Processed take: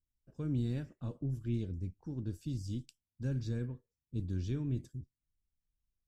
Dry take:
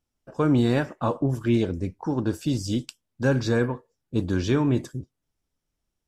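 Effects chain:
guitar amp tone stack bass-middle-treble 10-0-1
level +3 dB

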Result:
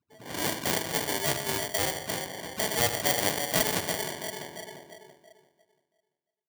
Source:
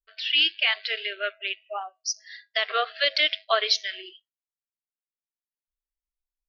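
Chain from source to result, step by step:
variable-slope delta modulation 64 kbit/s
high-shelf EQ 2,200 Hz −4.5 dB
all-pass dispersion highs, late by 42 ms, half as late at 330 Hz
low-pass that shuts in the quiet parts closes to 1,300 Hz, open at −21 dBFS
bucket-brigade delay 340 ms, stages 2,048, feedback 31%, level −9.5 dB
on a send at −6.5 dB: convolution reverb RT60 0.60 s, pre-delay 7 ms
on the sum: automatic gain control gain up to 14 dB
tilt shelving filter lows +7 dB
sample-rate reduction 1,300 Hz, jitter 0%
high-pass filter 100 Hz 24 dB per octave
every bin compressed towards the loudest bin 2 to 1
level −6.5 dB

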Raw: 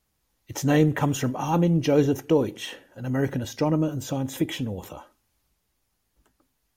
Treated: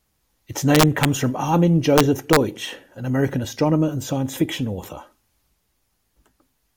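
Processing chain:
wrap-around overflow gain 10.5 dB
level +4.5 dB

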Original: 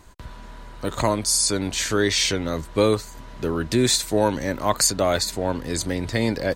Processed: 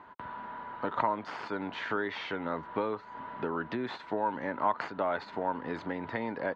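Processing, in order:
stylus tracing distortion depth 0.046 ms
downward compressor, threshold −27 dBFS, peak gain reduction 13 dB
loudspeaker in its box 240–2,600 Hz, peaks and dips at 350 Hz −4 dB, 530 Hz −3 dB, 920 Hz +9 dB, 1,400 Hz +4 dB, 2,400 Hz −5 dB

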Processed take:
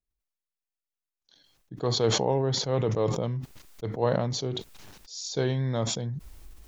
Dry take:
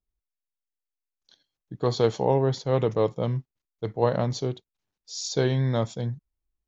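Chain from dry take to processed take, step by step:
level that may fall only so fast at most 32 dB per second
level −4 dB

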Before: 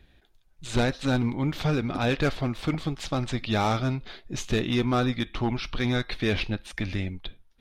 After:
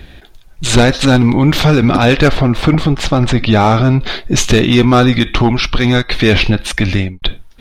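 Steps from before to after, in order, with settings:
0:02.28–0:04.01: high-shelf EQ 2,700 Hz −9 dB
0:06.71–0:07.22: fade out
boost into a limiter +23 dB
0:05.38–0:06.14: expander for the loud parts 1.5 to 1, over −22 dBFS
level −1 dB

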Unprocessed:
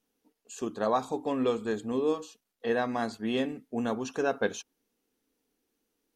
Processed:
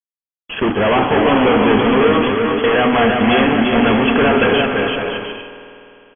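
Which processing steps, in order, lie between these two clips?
parametric band 2,200 Hz +4.5 dB 1.7 octaves
mains-hum notches 60/120/180/240/300/360/420/480 Hz
fuzz pedal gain 47 dB, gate −48 dBFS
linear-phase brick-wall low-pass 3,400 Hz
on a send: bouncing-ball delay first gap 340 ms, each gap 0.65×, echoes 5
on the sum: spring reverb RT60 2.9 s, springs 50 ms, chirp 65 ms, DRR 9 dB

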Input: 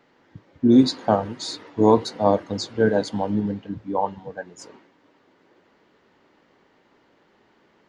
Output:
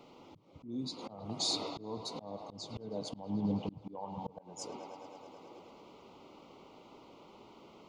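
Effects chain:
Butterworth band-reject 1,700 Hz, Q 1.6
in parallel at −1 dB: brickwall limiter −15 dBFS, peak gain reduction 11.5 dB
on the sum: downward compressor 10 to 1, threshold −26 dBFS, peak gain reduction 19 dB
dynamic equaliser 150 Hz, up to +7 dB, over −48 dBFS, Q 1.9
on a send: delay with a band-pass on its return 107 ms, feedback 82%, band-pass 1,400 Hz, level −8.5 dB
on the sum: volume swells 482 ms
level −1 dB

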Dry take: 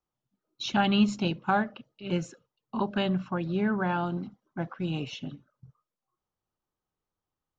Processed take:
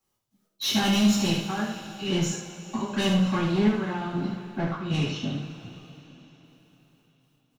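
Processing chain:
high-shelf EQ 2,400 Hz +9.5 dB
in parallel at −2 dB: brickwall limiter −19 dBFS, peak gain reduction 8 dB
on the sum: gate pattern "x.x.xxxxx...xxx" 98 BPM −12 dB
soft clipping −24.5 dBFS, distortion −7 dB
on a send: single-tap delay 76 ms −7.5 dB
on the sum: coupled-rooms reverb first 0.37 s, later 4.2 s, from −18 dB, DRR −8.5 dB
level −6 dB

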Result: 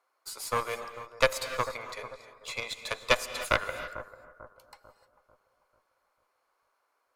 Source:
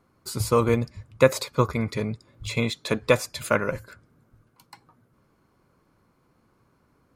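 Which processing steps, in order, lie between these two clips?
high-pass filter 580 Hz 24 dB per octave
harmonic generator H 2 −8 dB, 3 −13 dB, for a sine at −6 dBFS
bucket-brigade delay 444 ms, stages 4,096, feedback 42%, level −14 dB
reverb whose tail is shaped and stops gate 330 ms rising, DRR 11 dB
level +4 dB

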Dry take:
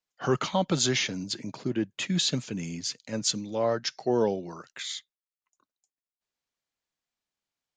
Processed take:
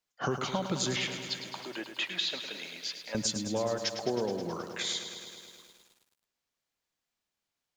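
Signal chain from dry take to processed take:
0:00.96–0:03.15: Chebyshev band-pass filter 690–3,600 Hz, order 2
downward compressor 16 to 1, threshold −30 dBFS, peak gain reduction 12 dB
feedback echo at a low word length 106 ms, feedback 80%, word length 10 bits, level −9.5 dB
level +2.5 dB

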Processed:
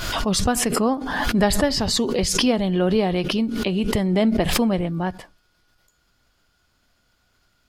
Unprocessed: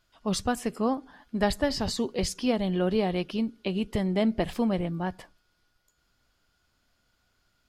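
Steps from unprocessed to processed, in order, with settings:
background raised ahead of every attack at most 34 dB per second
level +5.5 dB

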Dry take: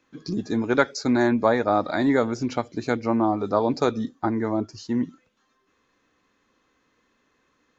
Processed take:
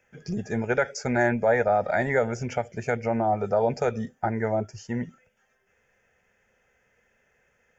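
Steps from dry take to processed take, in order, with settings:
brickwall limiter −12 dBFS, peak gain reduction 8 dB
phaser with its sweep stopped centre 1,100 Hz, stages 6
level +4.5 dB

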